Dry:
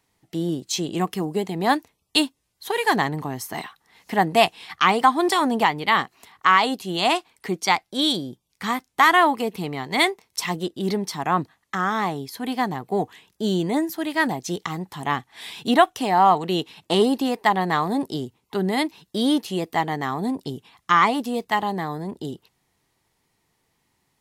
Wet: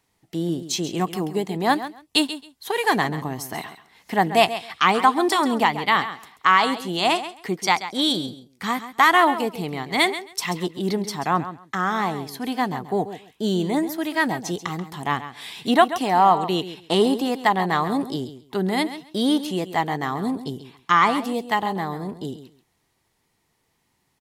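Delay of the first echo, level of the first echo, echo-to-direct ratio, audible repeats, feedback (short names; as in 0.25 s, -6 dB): 0.135 s, -12.5 dB, -12.5 dB, 2, 17%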